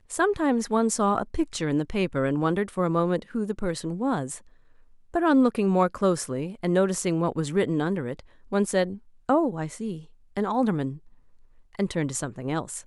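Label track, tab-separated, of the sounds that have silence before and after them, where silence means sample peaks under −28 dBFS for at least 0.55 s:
5.150000	10.910000	sound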